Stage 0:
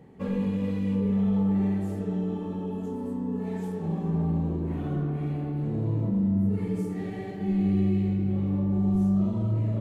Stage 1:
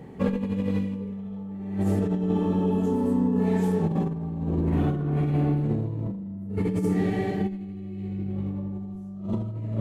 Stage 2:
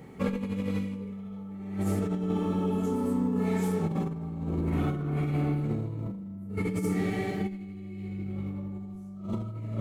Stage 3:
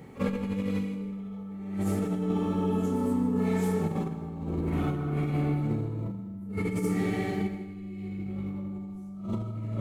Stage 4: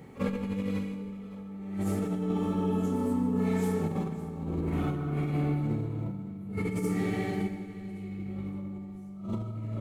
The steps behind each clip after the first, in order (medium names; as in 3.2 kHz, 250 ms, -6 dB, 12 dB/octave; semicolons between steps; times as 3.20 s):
compressor with a negative ratio -30 dBFS, ratio -0.5; trim +4.5 dB
treble shelf 3.8 kHz +10 dB; small resonant body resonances 1.3/2.2 kHz, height 12 dB, ringing for 30 ms; trim -4.5 dB
pre-echo 45 ms -16 dB; plate-style reverb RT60 0.85 s, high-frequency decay 0.85×, pre-delay 105 ms, DRR 10.5 dB
feedback delay 560 ms, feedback 38%, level -17 dB; trim -1.5 dB